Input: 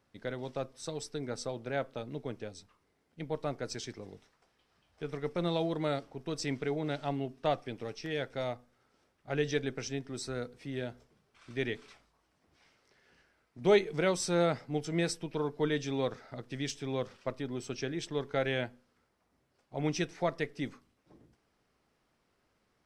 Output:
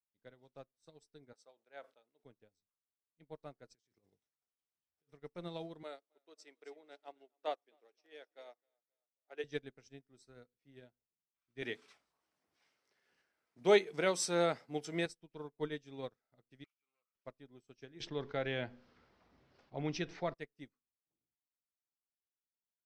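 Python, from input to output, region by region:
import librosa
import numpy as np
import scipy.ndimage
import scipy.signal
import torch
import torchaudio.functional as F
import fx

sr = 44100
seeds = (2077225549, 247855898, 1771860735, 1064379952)

y = fx.chain(x, sr, fx.highpass(hz=500.0, slope=12),
    fx.sustainer(db_per_s=100.0), at=(1.33, 2.24))
y = fx.chain(y, sr, fx.highpass(hz=51.0, slope=12),
    fx.high_shelf(hz=6200.0, db=8.5),
    fx.over_compress(threshold_db=-47.0, ratio=-1.0), at=(3.75, 5.13))
y = fx.chain(y, sr, fx.highpass(hz=350.0, slope=24),
    fx.echo_feedback(ms=265, feedback_pct=38, wet_db=-15.5), at=(5.83, 9.44))
y = fx.chain(y, sr, fx.highpass(hz=320.0, slope=6),
    fx.env_flatten(amount_pct=50), at=(11.62, 15.06))
y = fx.chain(y, sr, fx.self_delay(depth_ms=0.22),
    fx.double_bandpass(hz=1700.0, octaves=0.84), at=(16.64, 17.15))
y = fx.chain(y, sr, fx.lowpass(hz=5100.0, slope=24),
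    fx.env_flatten(amount_pct=70), at=(18.0, 20.34))
y = fx.high_shelf(y, sr, hz=8300.0, db=3.5)
y = fx.upward_expand(y, sr, threshold_db=-47.0, expansion=2.5)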